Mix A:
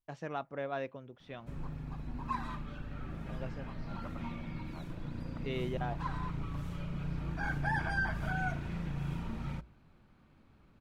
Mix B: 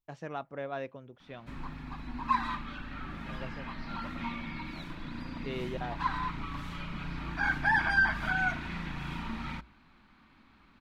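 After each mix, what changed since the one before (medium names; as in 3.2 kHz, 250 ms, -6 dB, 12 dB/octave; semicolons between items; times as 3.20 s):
background: add ten-band graphic EQ 125 Hz -8 dB, 250 Hz +7 dB, 500 Hz -7 dB, 1 kHz +8 dB, 2 kHz +8 dB, 4 kHz +9 dB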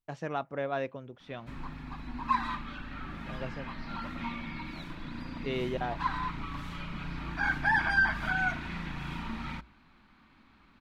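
first voice +4.5 dB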